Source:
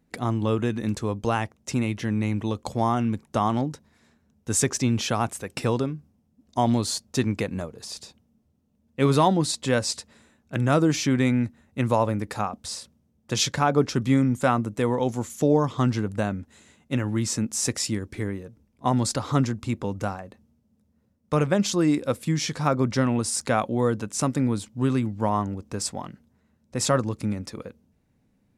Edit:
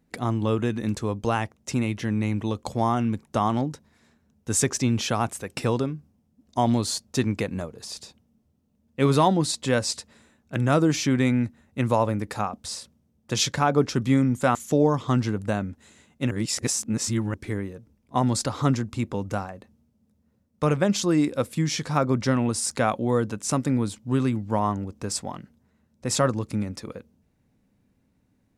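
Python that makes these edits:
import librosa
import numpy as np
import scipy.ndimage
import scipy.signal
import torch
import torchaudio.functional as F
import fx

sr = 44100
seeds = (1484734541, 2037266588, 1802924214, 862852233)

y = fx.edit(x, sr, fx.cut(start_s=14.55, length_s=0.7),
    fx.reverse_span(start_s=17.01, length_s=1.03), tone=tone)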